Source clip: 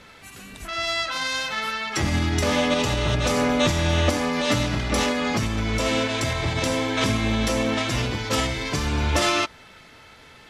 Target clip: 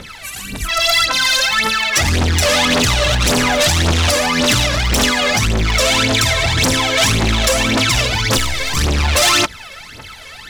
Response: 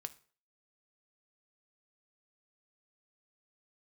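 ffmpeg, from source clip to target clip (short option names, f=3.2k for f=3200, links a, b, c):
-filter_complex "[0:a]asettb=1/sr,asplit=3[a][b][c];[a]atrim=end=8.374[d];[b]atrim=start=8.37:end=8.77,asetpts=PTS-STARTPTS,afade=t=in:d=0.004:c=qsin,afade=t=out:st=0.396:d=0.004:c=qsin,aeval=exprs='(tanh(20*val(0)+0.65)-tanh(0.65))/20':c=same[e];[c]atrim=start=8.766[f];[d][e]acrossfade=d=0.004:c1=hsin:c2=qsin[g];[g][f]acrossfade=d=0.004:c1=qsin:c2=hsin,aphaser=in_gain=1:out_gain=1:delay=1.9:decay=0.77:speed=1.8:type=triangular,asplit=2[h][i];[i]aeval=exprs='1.12*sin(PI/2*7.08*val(0)/1.12)':c=same,volume=-11dB[j];[h][j]amix=inputs=2:normalize=0,highshelf=f=2k:g=7.5,volume=-6.5dB"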